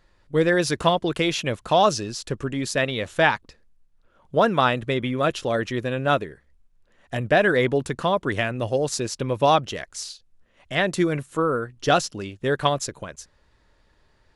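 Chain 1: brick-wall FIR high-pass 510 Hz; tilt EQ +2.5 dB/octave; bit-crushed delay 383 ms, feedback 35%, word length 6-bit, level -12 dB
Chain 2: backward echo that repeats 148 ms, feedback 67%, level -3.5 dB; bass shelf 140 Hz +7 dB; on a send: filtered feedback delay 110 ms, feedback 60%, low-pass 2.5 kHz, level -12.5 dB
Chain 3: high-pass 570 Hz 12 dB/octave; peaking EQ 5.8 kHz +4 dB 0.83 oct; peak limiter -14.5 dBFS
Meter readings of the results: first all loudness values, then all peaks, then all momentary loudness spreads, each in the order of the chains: -23.5 LUFS, -20.0 LUFS, -28.0 LUFS; -1.5 dBFS, -2.0 dBFS, -14.5 dBFS; 15 LU, 12 LU, 8 LU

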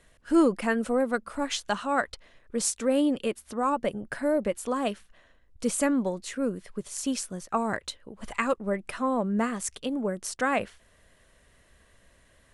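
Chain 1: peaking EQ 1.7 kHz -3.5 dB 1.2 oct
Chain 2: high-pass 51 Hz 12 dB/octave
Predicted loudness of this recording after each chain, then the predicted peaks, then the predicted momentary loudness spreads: -29.0 LUFS, -28.5 LUFS; -11.5 dBFS, -10.0 dBFS; 10 LU, 9 LU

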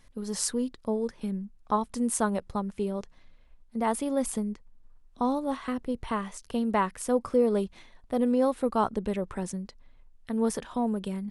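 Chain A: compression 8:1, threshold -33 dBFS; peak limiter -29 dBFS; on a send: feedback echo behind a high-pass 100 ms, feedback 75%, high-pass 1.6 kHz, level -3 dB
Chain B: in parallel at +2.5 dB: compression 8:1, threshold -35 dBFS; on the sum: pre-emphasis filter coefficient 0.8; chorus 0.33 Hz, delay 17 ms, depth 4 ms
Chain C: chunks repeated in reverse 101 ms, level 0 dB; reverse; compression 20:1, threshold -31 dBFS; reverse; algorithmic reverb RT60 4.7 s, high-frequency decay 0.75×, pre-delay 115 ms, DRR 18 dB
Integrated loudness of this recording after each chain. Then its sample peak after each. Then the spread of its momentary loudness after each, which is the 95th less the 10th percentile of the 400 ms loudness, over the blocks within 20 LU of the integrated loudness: -39.5 LUFS, -39.0 LUFS, -36.5 LUFS; -25.0 dBFS, -12.5 dBFS, -18.0 dBFS; 9 LU, 14 LU, 7 LU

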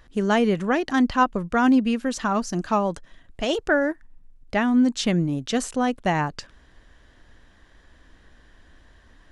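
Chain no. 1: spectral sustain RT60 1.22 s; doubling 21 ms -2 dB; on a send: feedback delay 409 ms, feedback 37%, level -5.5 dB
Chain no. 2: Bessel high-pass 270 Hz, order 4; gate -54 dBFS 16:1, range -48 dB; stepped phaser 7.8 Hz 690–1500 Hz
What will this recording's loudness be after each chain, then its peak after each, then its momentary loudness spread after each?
-17.5 LUFS, -29.0 LUFS; -1.5 dBFS, -10.5 dBFS; 8 LU, 6 LU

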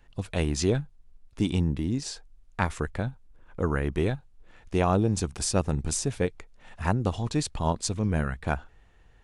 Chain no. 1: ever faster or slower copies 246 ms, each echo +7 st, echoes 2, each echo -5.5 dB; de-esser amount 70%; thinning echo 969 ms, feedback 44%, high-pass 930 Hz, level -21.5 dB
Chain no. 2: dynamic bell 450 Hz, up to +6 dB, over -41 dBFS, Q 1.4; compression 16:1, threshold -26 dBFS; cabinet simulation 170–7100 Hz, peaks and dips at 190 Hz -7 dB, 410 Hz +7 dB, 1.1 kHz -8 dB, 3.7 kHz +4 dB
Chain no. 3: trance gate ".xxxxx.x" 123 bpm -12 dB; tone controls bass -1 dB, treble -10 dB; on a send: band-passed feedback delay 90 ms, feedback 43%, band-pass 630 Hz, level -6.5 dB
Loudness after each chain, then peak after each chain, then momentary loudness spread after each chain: -28.5 LUFS, -33.0 LUFS, -30.5 LUFS; -9.0 dBFS, -13.5 dBFS, -10.5 dBFS; 9 LU, 10 LU, 15 LU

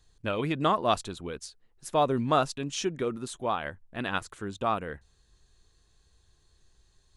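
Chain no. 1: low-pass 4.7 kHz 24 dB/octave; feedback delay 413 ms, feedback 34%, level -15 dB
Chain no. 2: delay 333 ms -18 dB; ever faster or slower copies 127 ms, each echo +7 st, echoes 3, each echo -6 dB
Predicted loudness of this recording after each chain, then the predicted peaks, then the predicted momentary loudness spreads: -30.0 LUFS, -29.5 LUFS; -10.5 dBFS, -9.5 dBFS; 15 LU, 9 LU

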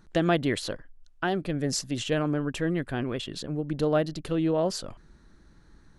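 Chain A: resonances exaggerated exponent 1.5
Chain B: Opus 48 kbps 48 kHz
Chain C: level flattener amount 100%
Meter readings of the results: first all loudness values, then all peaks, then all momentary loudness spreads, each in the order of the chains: -28.5 LUFS, -28.5 LUFS, -21.0 LUFS; -12.0 dBFS, -11.0 dBFS, -4.5 dBFS; 8 LU, 9 LU, 5 LU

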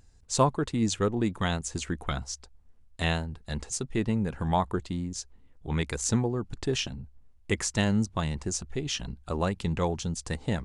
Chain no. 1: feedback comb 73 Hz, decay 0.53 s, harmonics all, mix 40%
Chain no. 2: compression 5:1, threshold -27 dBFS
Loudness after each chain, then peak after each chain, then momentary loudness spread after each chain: -33.5 LUFS, -33.5 LUFS; -13.0 dBFS, -13.5 dBFS; 9 LU, 6 LU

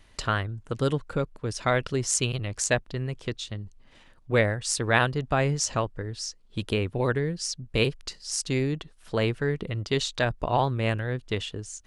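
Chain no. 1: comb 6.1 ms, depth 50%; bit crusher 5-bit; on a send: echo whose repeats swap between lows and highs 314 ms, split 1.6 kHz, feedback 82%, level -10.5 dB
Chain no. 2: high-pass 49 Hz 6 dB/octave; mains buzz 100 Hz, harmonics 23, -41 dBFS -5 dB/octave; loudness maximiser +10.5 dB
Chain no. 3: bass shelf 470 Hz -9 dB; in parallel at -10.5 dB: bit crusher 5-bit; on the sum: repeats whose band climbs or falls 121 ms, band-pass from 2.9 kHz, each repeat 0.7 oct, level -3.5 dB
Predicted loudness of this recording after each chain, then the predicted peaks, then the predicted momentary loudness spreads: -26.0 LUFS, -17.5 LUFS, -27.5 LUFS; -4.5 dBFS, -1.0 dBFS, -3.0 dBFS; 8 LU, 9 LU, 10 LU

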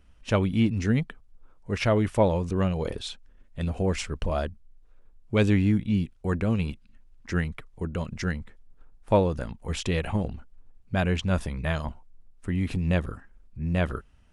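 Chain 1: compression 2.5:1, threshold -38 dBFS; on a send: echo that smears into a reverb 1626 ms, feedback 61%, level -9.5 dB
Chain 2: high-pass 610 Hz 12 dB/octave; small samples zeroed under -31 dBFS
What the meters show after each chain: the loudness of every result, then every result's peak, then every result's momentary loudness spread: -38.5 LUFS, -35.0 LUFS; -22.5 dBFS, -11.0 dBFS; 12 LU, 19 LU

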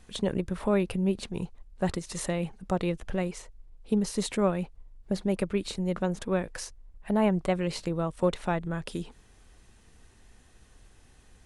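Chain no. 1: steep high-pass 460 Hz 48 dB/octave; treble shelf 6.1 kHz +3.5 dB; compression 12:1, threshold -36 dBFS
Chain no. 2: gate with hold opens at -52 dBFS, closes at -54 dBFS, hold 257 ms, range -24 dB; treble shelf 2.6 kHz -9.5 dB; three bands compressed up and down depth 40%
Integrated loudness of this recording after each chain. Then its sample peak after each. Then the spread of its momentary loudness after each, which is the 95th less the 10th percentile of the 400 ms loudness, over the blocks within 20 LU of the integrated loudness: -42.0 LUFS, -31.0 LUFS; -21.0 dBFS, -13.5 dBFS; 22 LU, 9 LU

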